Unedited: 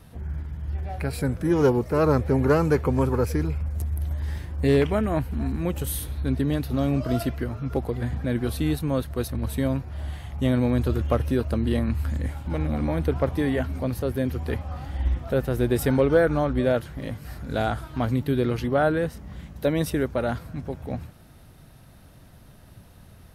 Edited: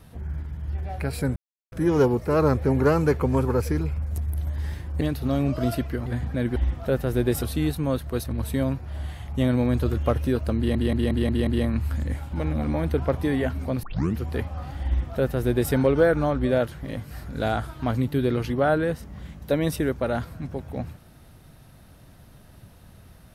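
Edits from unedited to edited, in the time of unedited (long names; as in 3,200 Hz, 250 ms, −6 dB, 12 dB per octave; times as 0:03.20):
0:01.36: splice in silence 0.36 s
0:04.65–0:06.49: remove
0:07.54–0:07.96: remove
0:11.61: stutter 0.18 s, 6 plays
0:13.97: tape start 0.35 s
0:15.00–0:15.86: duplicate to 0:08.46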